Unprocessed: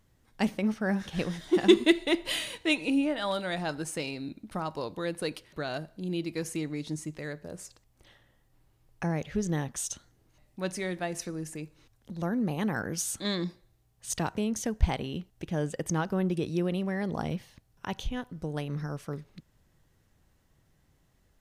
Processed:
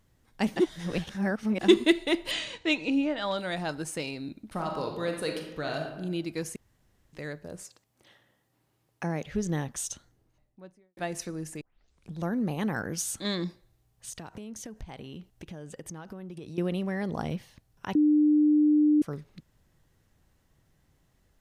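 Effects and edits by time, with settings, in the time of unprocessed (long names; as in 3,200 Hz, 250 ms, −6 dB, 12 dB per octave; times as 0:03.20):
0:00.56–0:01.61: reverse
0:02.31–0:03.38: Butterworth low-pass 7,500 Hz
0:04.50–0:05.86: thrown reverb, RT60 1 s, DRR 2 dB
0:06.56–0:07.13: fill with room tone
0:07.63–0:09.26: high-pass filter 150 Hz
0:09.81–0:10.97: fade out and dull
0:11.61: tape start 0.58 s
0:14.09–0:16.58: downward compressor, threshold −38 dBFS
0:17.95–0:19.02: beep over 300 Hz −18 dBFS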